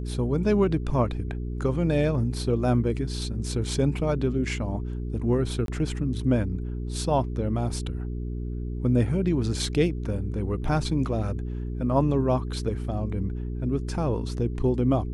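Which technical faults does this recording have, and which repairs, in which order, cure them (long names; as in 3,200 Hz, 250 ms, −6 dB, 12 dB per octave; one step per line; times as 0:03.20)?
mains hum 60 Hz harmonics 7 −31 dBFS
0:05.66–0:05.68: drop-out 22 ms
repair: hum removal 60 Hz, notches 7
repair the gap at 0:05.66, 22 ms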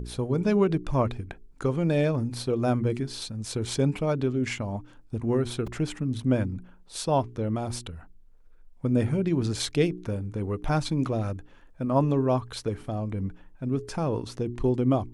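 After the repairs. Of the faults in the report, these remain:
none of them is left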